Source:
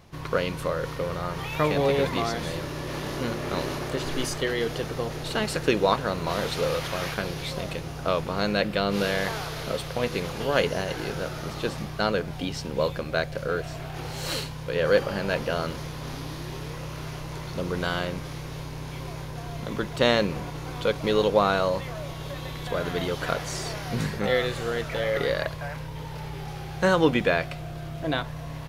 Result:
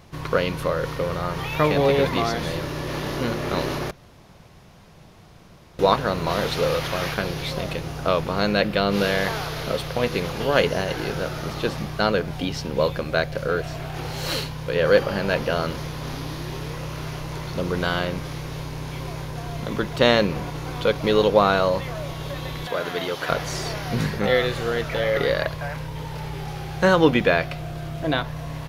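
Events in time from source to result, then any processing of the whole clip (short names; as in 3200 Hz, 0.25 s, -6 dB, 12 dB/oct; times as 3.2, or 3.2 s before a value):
3.91–5.79 room tone
22.66–23.3 HPF 400 Hz 6 dB/oct
whole clip: dynamic EQ 8100 Hz, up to -7 dB, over -57 dBFS, Q 2.5; gain +4 dB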